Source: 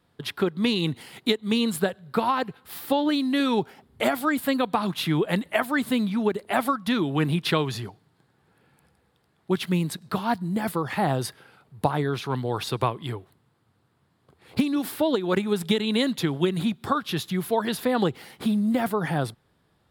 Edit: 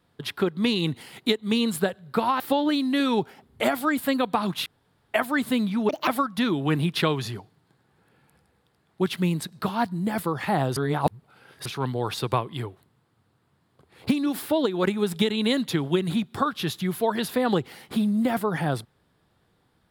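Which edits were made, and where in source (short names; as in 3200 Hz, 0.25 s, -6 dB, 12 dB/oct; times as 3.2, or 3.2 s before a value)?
2.4–2.8 cut
5.06–5.54 room tone
6.29–6.57 speed 151%
11.26–12.15 reverse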